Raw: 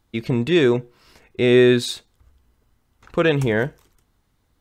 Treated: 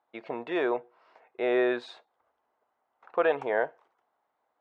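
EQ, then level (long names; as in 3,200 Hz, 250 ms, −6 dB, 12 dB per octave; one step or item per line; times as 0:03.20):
four-pole ladder band-pass 840 Hz, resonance 45%
+8.5 dB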